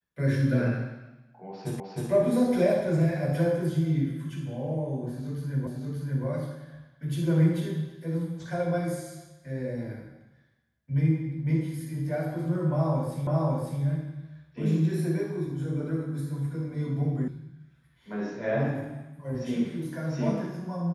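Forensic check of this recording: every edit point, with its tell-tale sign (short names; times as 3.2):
1.8 repeat of the last 0.31 s
5.67 repeat of the last 0.58 s
13.27 repeat of the last 0.55 s
17.28 sound cut off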